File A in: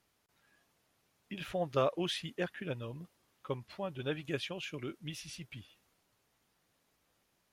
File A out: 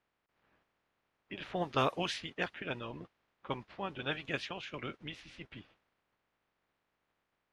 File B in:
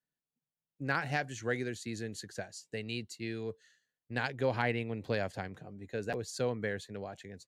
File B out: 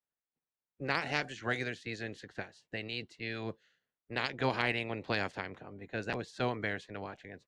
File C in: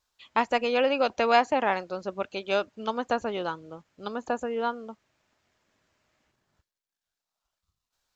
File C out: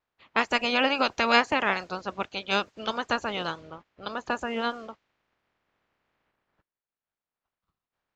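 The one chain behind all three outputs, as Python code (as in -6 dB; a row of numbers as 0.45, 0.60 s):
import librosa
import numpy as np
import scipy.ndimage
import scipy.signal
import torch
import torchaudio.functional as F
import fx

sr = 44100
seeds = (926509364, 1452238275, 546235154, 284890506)

y = fx.spec_clip(x, sr, under_db=16)
y = fx.env_lowpass(y, sr, base_hz=2000.0, full_db=-24.5)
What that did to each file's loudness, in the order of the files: 0.0, 0.0, +0.5 LU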